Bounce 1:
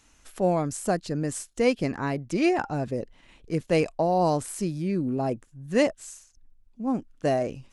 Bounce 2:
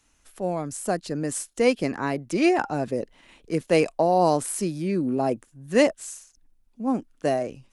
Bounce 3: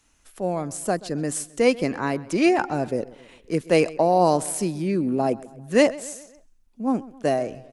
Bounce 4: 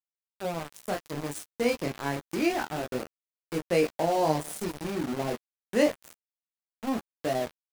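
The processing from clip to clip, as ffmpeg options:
ffmpeg -i in.wav -filter_complex "[0:a]equalizer=frequency=9900:width_type=o:width=0.29:gain=5.5,acrossover=split=190[link_01][link_02];[link_02]dynaudnorm=framelen=340:gausssize=5:maxgain=12dB[link_03];[link_01][link_03]amix=inputs=2:normalize=0,volume=-5.5dB" out.wav
ffmpeg -i in.wav -filter_complex "[0:a]asplit=2[link_01][link_02];[link_02]adelay=132,lowpass=frequency=4400:poles=1,volume=-19.5dB,asplit=2[link_03][link_04];[link_04]adelay=132,lowpass=frequency=4400:poles=1,volume=0.51,asplit=2[link_05][link_06];[link_06]adelay=132,lowpass=frequency=4400:poles=1,volume=0.51,asplit=2[link_07][link_08];[link_08]adelay=132,lowpass=frequency=4400:poles=1,volume=0.51[link_09];[link_01][link_03][link_05][link_07][link_09]amix=inputs=5:normalize=0,volume=1.5dB" out.wav
ffmpeg -i in.wav -filter_complex "[0:a]flanger=delay=22.5:depth=6.6:speed=0.29,aeval=exprs='val(0)*gte(abs(val(0)),0.0398)':channel_layout=same,asplit=2[link_01][link_02];[link_02]adelay=13,volume=-12.5dB[link_03];[link_01][link_03]amix=inputs=2:normalize=0,volume=-4dB" out.wav

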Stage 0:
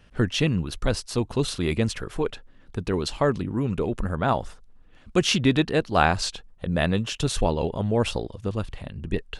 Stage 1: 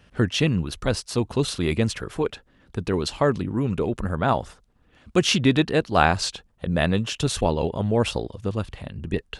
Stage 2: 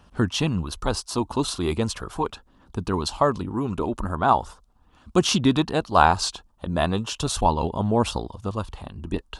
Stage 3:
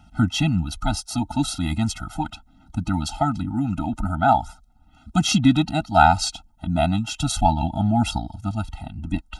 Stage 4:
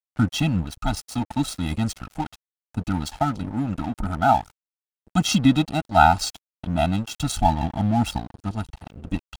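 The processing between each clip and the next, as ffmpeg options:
ffmpeg -i in.wav -af "highpass=45,volume=1.5dB" out.wav
ffmpeg -i in.wav -af "equalizer=frequency=125:width_type=o:width=1:gain=-6,equalizer=frequency=500:width_type=o:width=1:gain=-6,equalizer=frequency=1000:width_type=o:width=1:gain=9,equalizer=frequency=2000:width_type=o:width=1:gain=-11,aphaser=in_gain=1:out_gain=1:delay=3.5:decay=0.25:speed=0.38:type=triangular,volume=1.5dB" out.wav
ffmpeg -i in.wav -af "afftfilt=real='re*eq(mod(floor(b*sr/1024/310),2),0)':imag='im*eq(mod(floor(b*sr/1024/310),2),0)':win_size=1024:overlap=0.75,volume=4dB" out.wav
ffmpeg -i in.wav -af "aeval=exprs='sgn(val(0))*max(abs(val(0))-0.0188,0)':channel_layout=same" out.wav

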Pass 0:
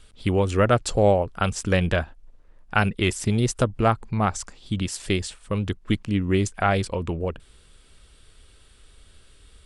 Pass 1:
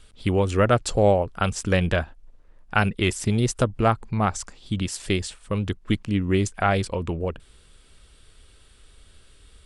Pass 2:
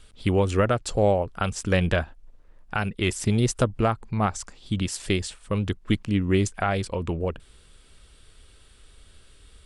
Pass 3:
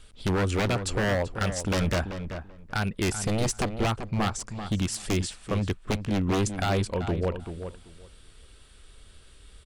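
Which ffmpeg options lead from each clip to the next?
ffmpeg -i in.wav -af anull out.wav
ffmpeg -i in.wav -af "alimiter=limit=-10.5dB:level=0:latency=1:release=466" out.wav
ffmpeg -i in.wav -filter_complex "[0:a]aeval=exprs='0.106*(abs(mod(val(0)/0.106+3,4)-2)-1)':channel_layout=same,asplit=2[link_01][link_02];[link_02]adelay=386,lowpass=frequency=2300:poles=1,volume=-9dB,asplit=2[link_03][link_04];[link_04]adelay=386,lowpass=frequency=2300:poles=1,volume=0.17,asplit=2[link_05][link_06];[link_06]adelay=386,lowpass=frequency=2300:poles=1,volume=0.17[link_07];[link_01][link_03][link_05][link_07]amix=inputs=4:normalize=0" out.wav

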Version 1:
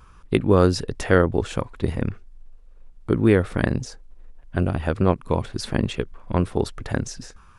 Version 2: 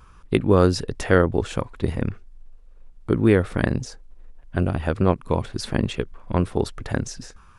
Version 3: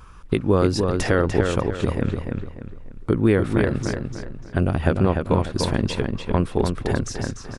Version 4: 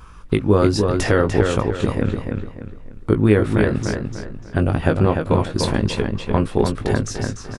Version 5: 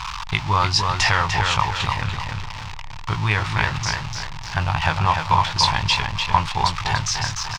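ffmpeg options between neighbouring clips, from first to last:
ffmpeg -i in.wav -af anull out.wav
ffmpeg -i in.wav -filter_complex "[0:a]alimiter=limit=-11dB:level=0:latency=1:release=439,asplit=2[link_01][link_02];[link_02]adelay=296,lowpass=frequency=4600:poles=1,volume=-4.5dB,asplit=2[link_03][link_04];[link_04]adelay=296,lowpass=frequency=4600:poles=1,volume=0.36,asplit=2[link_05][link_06];[link_06]adelay=296,lowpass=frequency=4600:poles=1,volume=0.36,asplit=2[link_07][link_08];[link_08]adelay=296,lowpass=frequency=4600:poles=1,volume=0.36,asplit=2[link_09][link_10];[link_10]adelay=296,lowpass=frequency=4600:poles=1,volume=0.36[link_11];[link_03][link_05][link_07][link_09][link_11]amix=inputs=5:normalize=0[link_12];[link_01][link_12]amix=inputs=2:normalize=0,volume=4.5dB" out.wav
ffmpeg -i in.wav -filter_complex "[0:a]asplit=2[link_01][link_02];[link_02]adelay=19,volume=-7dB[link_03];[link_01][link_03]amix=inputs=2:normalize=0,volume=2dB" out.wav
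ffmpeg -i in.wav -af "aeval=exprs='val(0)+0.5*0.0422*sgn(val(0))':channel_layout=same,firequalizer=gain_entry='entry(150,0);entry(230,-18);entry(490,-14);entry(900,15);entry(1400,5);entry(2300,12);entry(3600,12);entry(5200,12);entry(11000,-12)':delay=0.05:min_phase=1,volume=-4dB" out.wav

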